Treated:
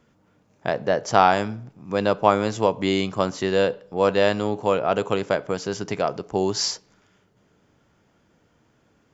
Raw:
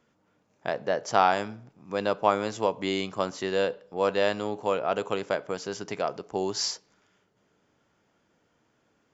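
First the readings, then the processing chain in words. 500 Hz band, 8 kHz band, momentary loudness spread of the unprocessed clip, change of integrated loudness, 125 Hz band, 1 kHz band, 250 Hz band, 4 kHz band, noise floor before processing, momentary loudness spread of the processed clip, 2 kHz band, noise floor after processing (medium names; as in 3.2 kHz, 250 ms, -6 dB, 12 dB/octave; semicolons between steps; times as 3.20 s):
+5.5 dB, no reading, 10 LU, +5.5 dB, +10.5 dB, +5.0 dB, +8.0 dB, +4.5 dB, -71 dBFS, 9 LU, +4.5 dB, -64 dBFS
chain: bass shelf 180 Hz +9.5 dB; trim +4.5 dB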